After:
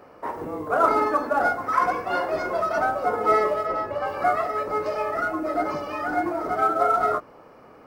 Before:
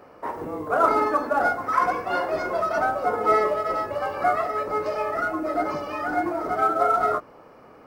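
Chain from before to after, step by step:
0:03.65–0:04.06: high-shelf EQ 3,700 Hz → 6,600 Hz −10 dB

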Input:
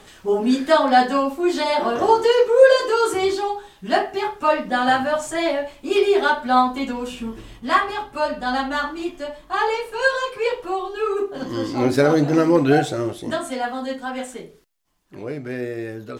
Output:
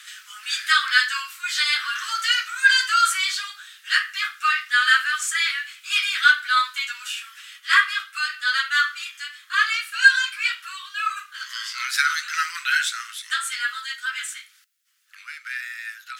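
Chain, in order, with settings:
Butterworth high-pass 1,300 Hz 72 dB per octave
level +7.5 dB

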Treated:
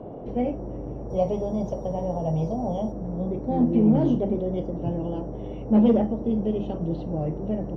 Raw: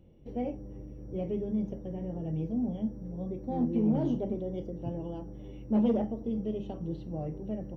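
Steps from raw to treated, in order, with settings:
0:01.10–0:02.92: drawn EQ curve 160 Hz 0 dB, 300 Hz −13 dB, 620 Hz +11 dB, 1,000 Hz +12 dB, 1,600 Hz −5 dB, 2,600 Hz −1 dB, 5,100 Hz +14 dB
noise in a band 110–630 Hz −46 dBFS
high-frequency loss of the air 54 metres
level +8 dB

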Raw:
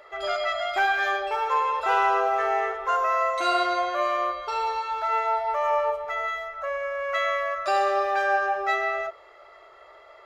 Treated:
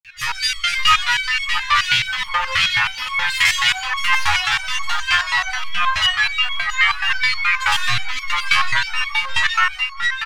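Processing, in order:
phase distortion by the signal itself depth 0.23 ms
elliptic band-stop filter 110–1,700 Hz, stop band 80 dB
high-shelf EQ 2,900 Hz −9 dB
granular cloud, pitch spread up and down by 7 semitones
repeating echo 673 ms, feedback 24%, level −5 dB
automatic gain control gain up to 10.5 dB
dynamic equaliser 1,500 Hz, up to −6 dB, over −38 dBFS, Q 1.5
boost into a limiter +25.5 dB
step-sequenced resonator 9.4 Hz 84–1,100 Hz
level +4 dB

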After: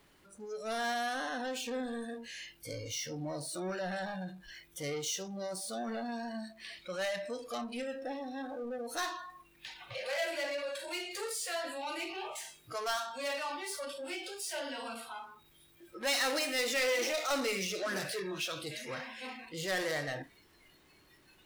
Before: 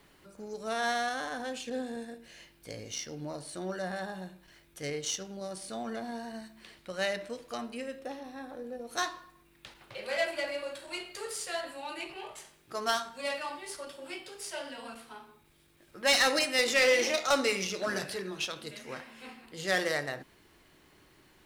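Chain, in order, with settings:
power curve on the samples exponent 0.5
noise reduction from a noise print of the clip's start 16 dB
level −8.5 dB

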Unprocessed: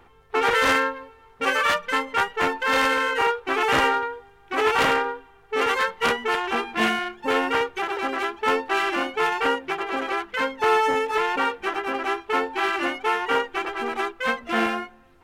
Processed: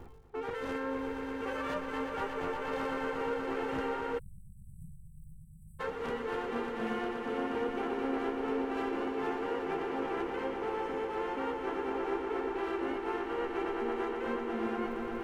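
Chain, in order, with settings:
surface crackle 270 per second −46 dBFS
tilt shelving filter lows +9 dB, about 750 Hz
reversed playback
downward compressor 16 to 1, threshold −34 dBFS, peak gain reduction 20.5 dB
reversed playback
echo that builds up and dies away 119 ms, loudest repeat 5, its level −9 dB
time-frequency box erased 0:04.19–0:05.80, 210–7,700 Hz

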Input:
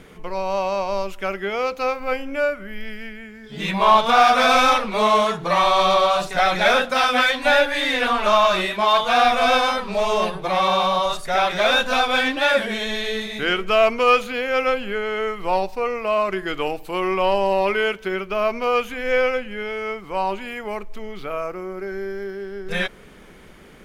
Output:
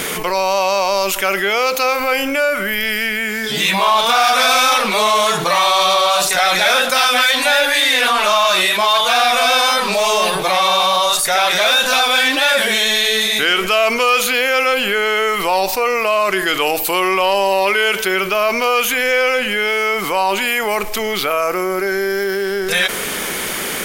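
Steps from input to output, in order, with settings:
RIAA equalisation recording
envelope flattener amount 70%
level −1 dB

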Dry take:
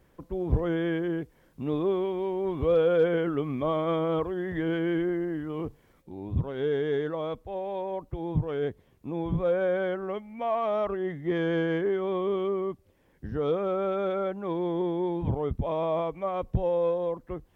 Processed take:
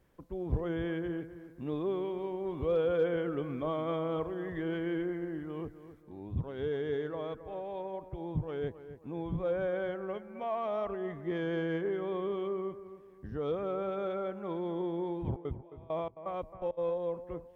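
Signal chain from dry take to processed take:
0:15.18–0:16.77: gate pattern "xx.x....xx..x" 167 BPM −24 dB
on a send: bucket-brigade delay 266 ms, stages 4,096, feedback 37%, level −13 dB
on the sum: level −6.5 dB

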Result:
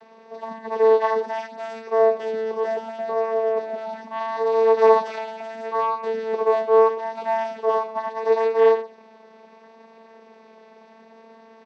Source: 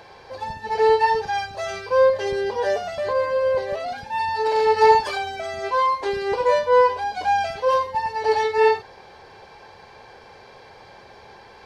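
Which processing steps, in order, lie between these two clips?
channel vocoder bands 16, saw 223 Hz
pitch vibrato 0.73 Hz 13 cents
on a send: single-tap delay 116 ms −18 dB

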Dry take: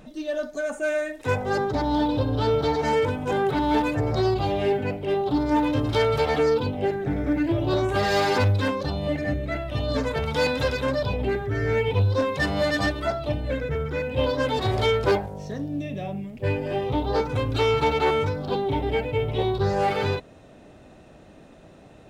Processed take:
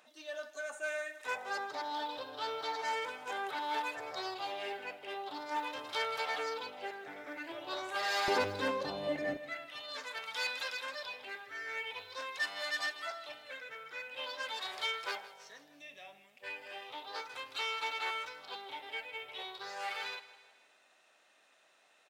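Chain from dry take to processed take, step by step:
high-pass filter 960 Hz 12 dB per octave, from 0:08.28 350 Hz, from 0:09.37 1,400 Hz
repeating echo 160 ms, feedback 50%, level −16.5 dB
level −6.5 dB

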